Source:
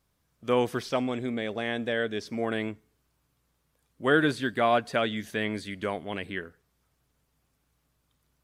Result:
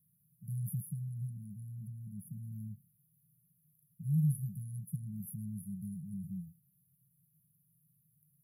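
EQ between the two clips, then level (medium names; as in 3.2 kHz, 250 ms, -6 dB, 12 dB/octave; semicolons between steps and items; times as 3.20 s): high-pass 140 Hz 24 dB/octave; brick-wall FIR band-stop 190–10000 Hz; +9.0 dB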